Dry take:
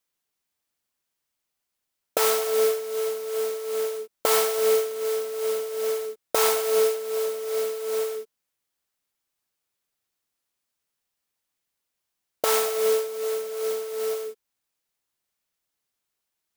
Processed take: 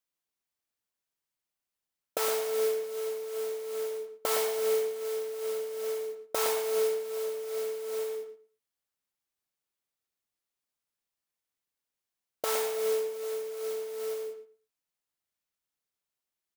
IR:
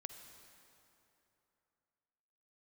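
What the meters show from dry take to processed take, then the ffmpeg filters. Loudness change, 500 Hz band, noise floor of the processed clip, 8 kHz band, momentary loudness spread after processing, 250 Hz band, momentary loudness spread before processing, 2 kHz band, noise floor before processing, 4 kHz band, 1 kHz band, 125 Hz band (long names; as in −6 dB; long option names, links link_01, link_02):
−7.0 dB, −6.0 dB, below −85 dBFS, −8.0 dB, 8 LU, −7.0 dB, 7 LU, −7.5 dB, −82 dBFS, −7.5 dB, −8.0 dB, can't be measured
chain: -filter_complex "[0:a]asplit=2[link_01][link_02];[link_02]adelay=114,lowpass=frequency=2100:poles=1,volume=-6dB,asplit=2[link_03][link_04];[link_04]adelay=114,lowpass=frequency=2100:poles=1,volume=0.18,asplit=2[link_05][link_06];[link_06]adelay=114,lowpass=frequency=2100:poles=1,volume=0.18[link_07];[link_01][link_03][link_05][link_07]amix=inputs=4:normalize=0,volume=-8dB"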